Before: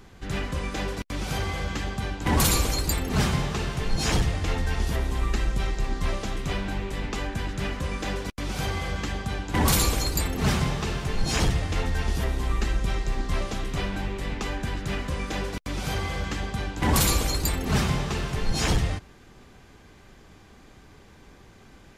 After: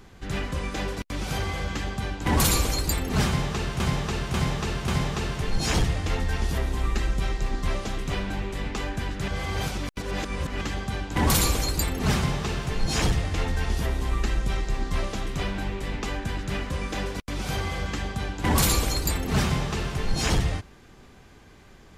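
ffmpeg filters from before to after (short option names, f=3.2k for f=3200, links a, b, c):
-filter_complex "[0:a]asplit=6[a][b][c][d][e][f];[a]atrim=end=3.802[g];[b]atrim=start=3.258:end=3.802[h];[c]atrim=start=3.258:end=3.802[i];[d]atrim=start=3.258:end=7.662[j];[e]atrim=start=7.658:end=8.992,asetpts=PTS-STARTPTS,areverse[k];[f]atrim=start=8.988[l];[g][h]acrossfade=d=0.004:c1=hsin:c2=hsin[m];[m][i]acrossfade=d=0.004:c1=hsin:c2=hsin[n];[n][j]acrossfade=d=0.004:c1=hsin:c2=hsin[o];[o][k]acrossfade=d=0.004:c1=hsin:c2=hsin[p];[p][l]acrossfade=d=0.004:c1=hsin:c2=hsin"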